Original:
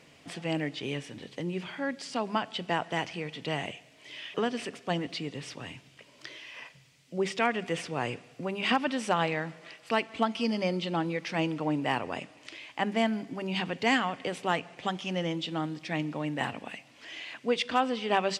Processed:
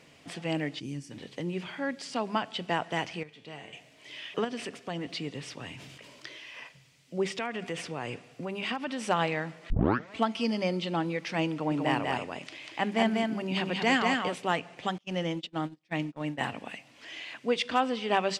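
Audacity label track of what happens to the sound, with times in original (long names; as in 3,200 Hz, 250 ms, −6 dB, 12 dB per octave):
0.790000	1.110000	gain on a spectral selection 360–4,300 Hz −15 dB
3.230000	3.730000	tuned comb filter 110 Hz, decay 1 s, mix 80%
4.440000	5.080000	downward compressor 3 to 1, threshold −31 dBFS
5.710000	6.270000	level that may fall only so fast at most 26 dB per second
7.260000	9.080000	downward compressor 2.5 to 1, threshold −31 dBFS
9.700000	9.700000	tape start 0.45 s
11.520000	14.350000	single-tap delay 193 ms −3 dB
14.980000	16.440000	noise gate −34 dBFS, range −31 dB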